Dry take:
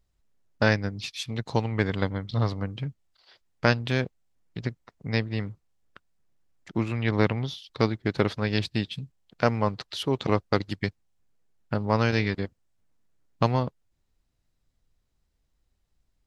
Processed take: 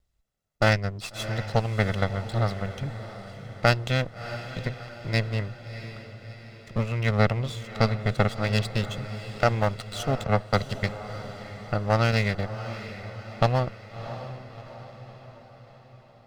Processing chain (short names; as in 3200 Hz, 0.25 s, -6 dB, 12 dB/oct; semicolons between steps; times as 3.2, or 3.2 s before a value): minimum comb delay 1.5 ms; diffused feedback echo 0.665 s, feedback 54%, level -12 dB; 10.24–10.7 three-band expander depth 70%